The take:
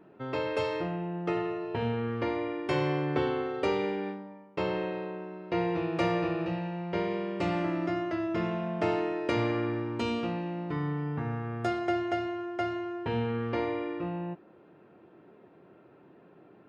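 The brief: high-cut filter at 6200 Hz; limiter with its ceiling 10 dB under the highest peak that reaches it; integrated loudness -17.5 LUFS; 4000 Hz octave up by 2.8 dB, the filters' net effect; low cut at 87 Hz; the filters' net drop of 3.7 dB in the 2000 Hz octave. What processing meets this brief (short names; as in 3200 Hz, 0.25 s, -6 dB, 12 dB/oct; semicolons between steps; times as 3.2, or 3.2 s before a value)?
HPF 87 Hz; LPF 6200 Hz; bell 2000 Hz -7 dB; bell 4000 Hz +8 dB; gain +16.5 dB; limiter -8 dBFS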